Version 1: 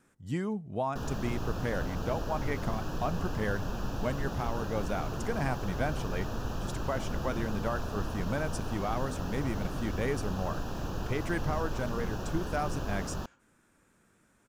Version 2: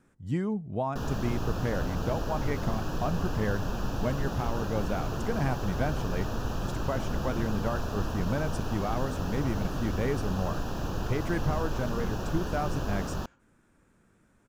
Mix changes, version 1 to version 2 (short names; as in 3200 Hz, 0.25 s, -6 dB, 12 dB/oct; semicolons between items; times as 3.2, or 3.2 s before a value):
speech: add tilt -1.5 dB/oct; background +3.0 dB